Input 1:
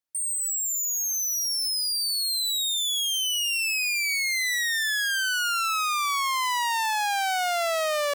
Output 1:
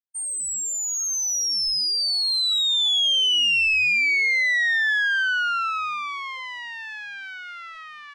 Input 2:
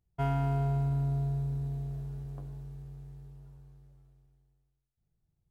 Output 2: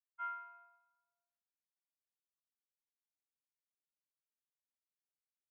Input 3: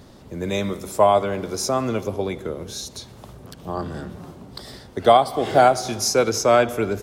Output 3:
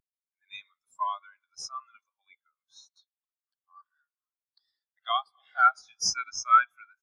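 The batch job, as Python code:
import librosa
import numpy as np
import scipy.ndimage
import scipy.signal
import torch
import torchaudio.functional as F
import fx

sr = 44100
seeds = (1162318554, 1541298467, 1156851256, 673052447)

p1 = scipy.signal.sosfilt(scipy.signal.butter(4, 1300.0, 'highpass', fs=sr, output='sos'), x)
p2 = fx.sample_hold(p1, sr, seeds[0], rate_hz=2600.0, jitter_pct=0)
p3 = p1 + (p2 * librosa.db_to_amplitude(-12.0))
y = fx.spectral_expand(p3, sr, expansion=2.5)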